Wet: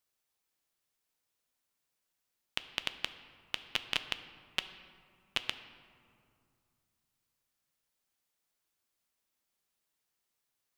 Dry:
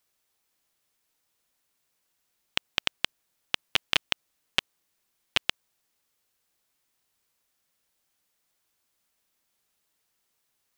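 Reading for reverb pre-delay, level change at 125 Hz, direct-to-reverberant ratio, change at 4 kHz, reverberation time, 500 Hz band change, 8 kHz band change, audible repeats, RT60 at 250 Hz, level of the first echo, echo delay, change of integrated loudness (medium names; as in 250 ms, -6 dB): 8 ms, -7.5 dB, 10.0 dB, -7.5 dB, 2.4 s, -7.5 dB, -8.0 dB, no echo, 3.0 s, no echo, no echo, -7.5 dB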